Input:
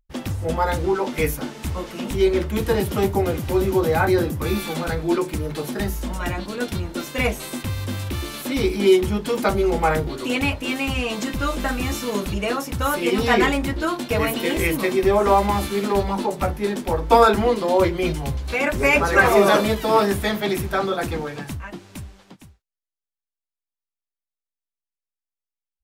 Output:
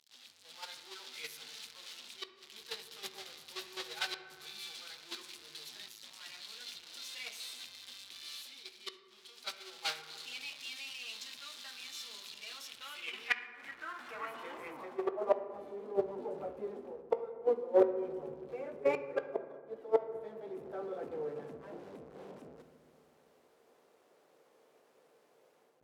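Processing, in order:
converter with a step at zero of −18 dBFS
noise gate −11 dBFS, range −36 dB
high-pass filter 160 Hz 6 dB per octave
high-shelf EQ 9,500 Hz +9 dB
in parallel at +2 dB: brickwall limiter −10.5 dBFS, peak gain reduction 8.5 dB
on the sum: automatic gain control gain up to 8.5 dB
gate with flip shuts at −8 dBFS, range −40 dB
gain into a clipping stage and back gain 21 dB
band-pass filter sweep 4,000 Hz → 470 Hz, 0:12.53–0:15.66
on a send at −8 dB: convolution reverb RT60 2.0 s, pre-delay 3 ms
on the sum: level +4.5 dB

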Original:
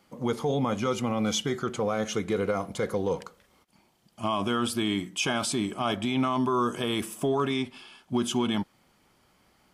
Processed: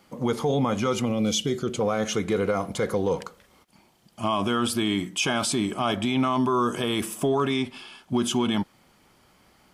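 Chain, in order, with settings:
0:01.05–0:01.81: flat-topped bell 1,200 Hz −10 dB
in parallel at −2 dB: brickwall limiter −24.5 dBFS, peak gain reduction 9.5 dB

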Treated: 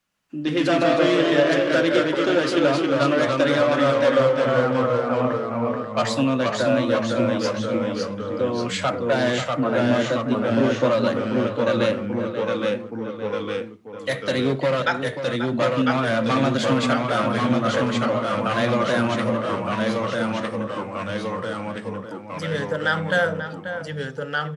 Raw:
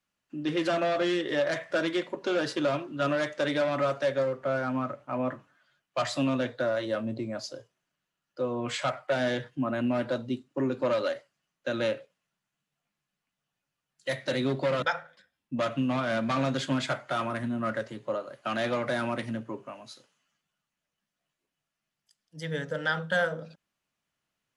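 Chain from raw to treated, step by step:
slap from a distant wall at 92 metres, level −9 dB
delay with pitch and tempo change per echo 116 ms, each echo −1 semitone, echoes 3
level +6 dB

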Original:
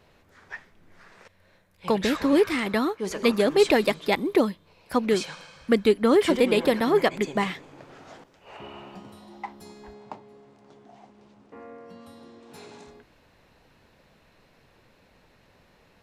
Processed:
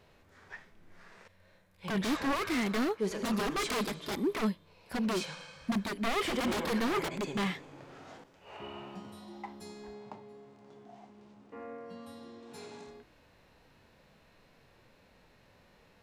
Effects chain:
wave folding −22.5 dBFS
harmonic and percussive parts rebalanced percussive −9 dB

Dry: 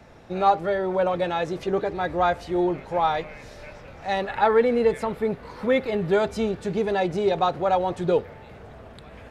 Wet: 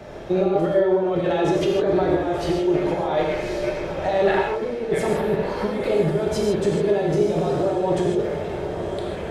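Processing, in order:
compressor whose output falls as the input rises −30 dBFS, ratio −1
hollow resonant body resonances 390/580/3,200 Hz, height 9 dB, ringing for 30 ms
on a send: feedback delay with all-pass diffusion 1,004 ms, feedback 45%, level −10 dB
on the sum: reverb whose tail is shaped and stops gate 180 ms flat, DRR −1 dB

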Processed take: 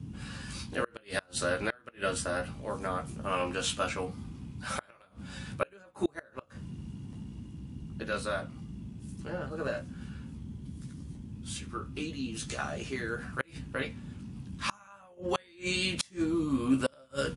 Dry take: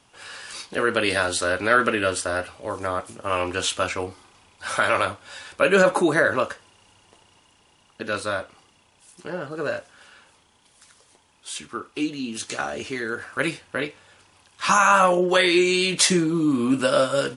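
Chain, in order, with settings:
double-tracking delay 15 ms −5 dB
noise in a band 49–240 Hz −34 dBFS
gate with flip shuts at −8 dBFS, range −31 dB
level −8.5 dB

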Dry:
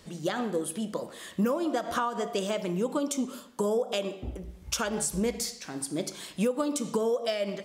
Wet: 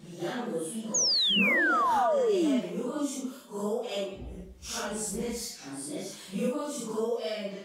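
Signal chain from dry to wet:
random phases in long frames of 200 ms
sound drawn into the spectrogram fall, 0:00.94–0:02.60, 230–6,900 Hz −22 dBFS
level −3.5 dB

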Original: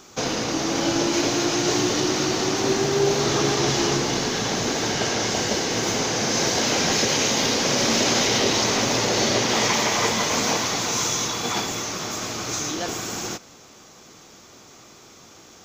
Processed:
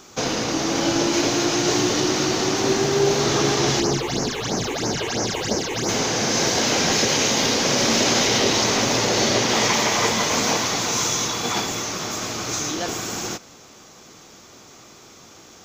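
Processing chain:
0:03.80–0:05.89: all-pass phaser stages 8, 3 Hz, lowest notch 180–3,500 Hz
level +1.5 dB

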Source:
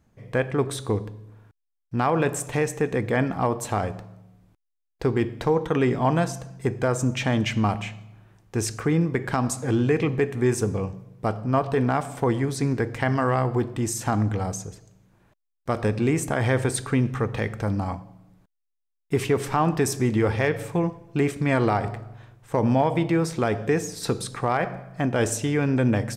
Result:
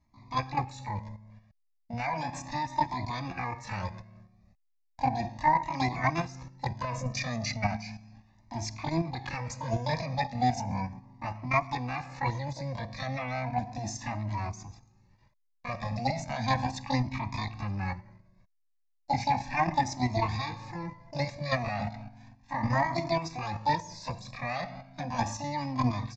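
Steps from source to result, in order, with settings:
output level in coarse steps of 10 dB
pitch-shifted copies added +12 semitones 0 dB
phaser with its sweep stopped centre 2,100 Hz, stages 8
downsampling to 16,000 Hz
flanger whose copies keep moving one way rising 0.35 Hz
level +2 dB

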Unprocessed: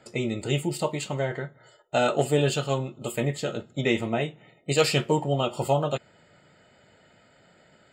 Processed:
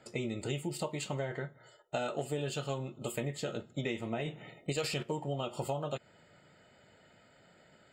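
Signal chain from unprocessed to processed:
0:04.19–0:05.03: transient designer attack +4 dB, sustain +8 dB
downward compressor 6 to 1, threshold −28 dBFS, peak gain reduction 14 dB
level −4 dB

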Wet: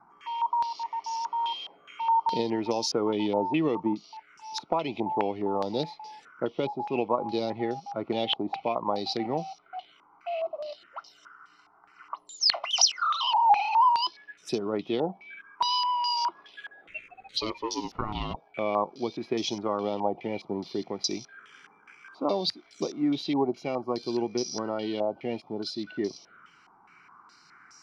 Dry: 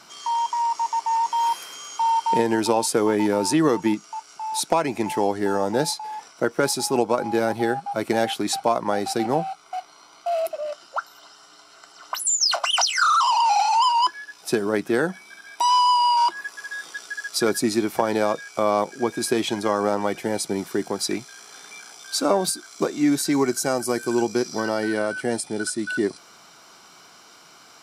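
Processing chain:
0:16.88–0:18.35: ring modulation 1,100 Hz → 450 Hz
phaser swept by the level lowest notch 530 Hz, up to 1,600 Hz, full sweep at −25.5 dBFS
low-pass on a step sequencer 4.8 Hz 820–5,700 Hz
level −6.5 dB

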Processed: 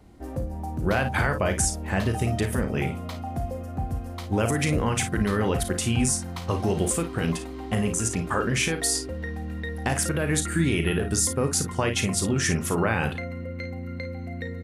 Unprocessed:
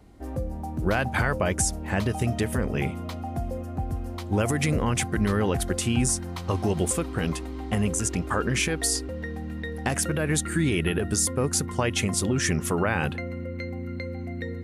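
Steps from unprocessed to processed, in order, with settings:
ambience of single reflections 36 ms −10 dB, 53 ms −10 dB

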